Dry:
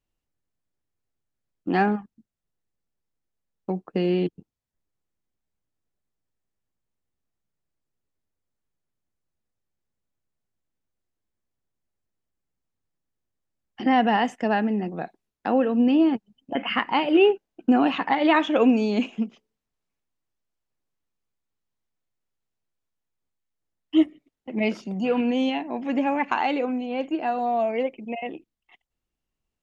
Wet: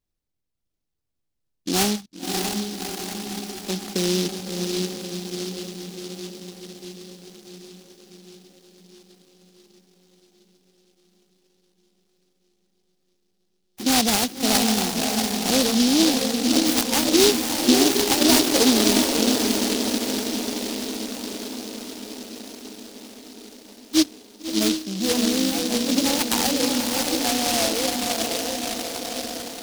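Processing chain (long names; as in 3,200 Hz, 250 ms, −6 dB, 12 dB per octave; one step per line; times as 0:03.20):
feedback delay with all-pass diffusion 619 ms, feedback 66%, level −3 dB
short delay modulated by noise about 4,300 Hz, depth 0.24 ms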